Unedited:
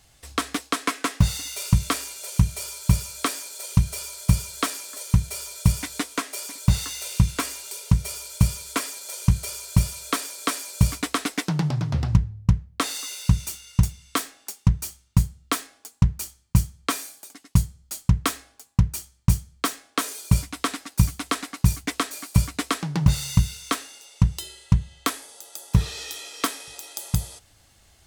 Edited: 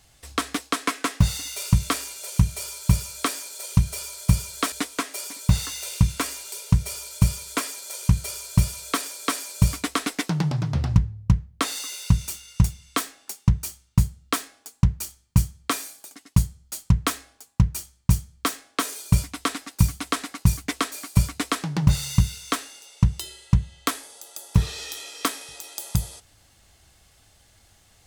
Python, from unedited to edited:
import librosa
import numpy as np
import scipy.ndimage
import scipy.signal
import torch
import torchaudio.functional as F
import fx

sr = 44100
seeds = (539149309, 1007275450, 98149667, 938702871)

y = fx.edit(x, sr, fx.cut(start_s=4.72, length_s=1.19), tone=tone)